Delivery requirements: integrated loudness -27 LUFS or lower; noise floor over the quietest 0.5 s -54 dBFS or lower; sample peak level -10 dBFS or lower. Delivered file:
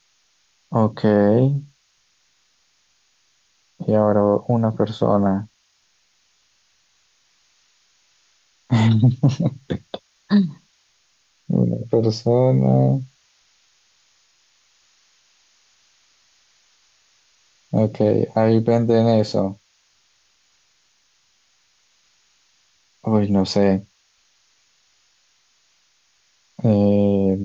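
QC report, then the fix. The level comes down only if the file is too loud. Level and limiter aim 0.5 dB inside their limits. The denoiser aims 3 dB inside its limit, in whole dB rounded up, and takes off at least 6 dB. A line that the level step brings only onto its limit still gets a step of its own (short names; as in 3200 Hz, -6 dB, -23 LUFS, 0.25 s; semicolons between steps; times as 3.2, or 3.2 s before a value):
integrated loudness -19.0 LUFS: fail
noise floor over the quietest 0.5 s -63 dBFS: OK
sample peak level -5.5 dBFS: fail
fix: gain -8.5 dB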